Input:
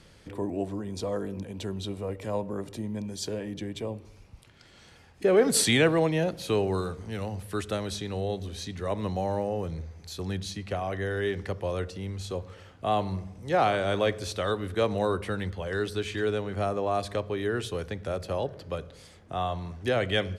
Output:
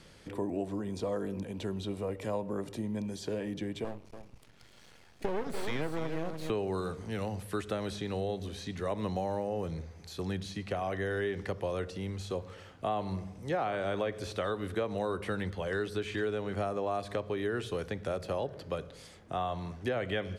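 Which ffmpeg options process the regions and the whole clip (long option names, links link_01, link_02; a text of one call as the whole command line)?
ffmpeg -i in.wav -filter_complex "[0:a]asettb=1/sr,asplit=3[link_01][link_02][link_03];[link_01]atrim=end=3.844[link_04];[link_02]atrim=start=3.84:end=6.5,asetpts=PTS-STARTPTS,afade=type=in:duration=0.004:curve=qsin,afade=type=out:start_time=2.656:duration=0.004:curve=qsin,aeval=exprs='max(val(0),0)':channel_layout=same,aecho=1:1:290:0.299,atrim=end_sample=117306[link_05];[link_03]atrim=start=6.496[link_06];[link_04][link_05]acrossfade=duration=0.004:curve1=hsin:curve2=qsin[link_07];[link_07][link_06]acrossfade=duration=0.004:curve1=qsin:curve2=hsin,acrossover=split=2700[link_08][link_09];[link_09]acompressor=threshold=-45dB:ratio=4:attack=1:release=60[link_10];[link_08][link_10]amix=inputs=2:normalize=0,equalizer=frequency=73:width_type=o:width=0.98:gain=-6,acompressor=threshold=-29dB:ratio=5" out.wav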